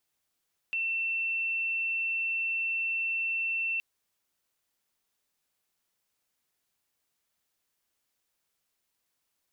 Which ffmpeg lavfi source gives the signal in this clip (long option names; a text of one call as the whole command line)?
ffmpeg -f lavfi -i "sine=frequency=2690:duration=3.07:sample_rate=44100,volume=-9.44dB" out.wav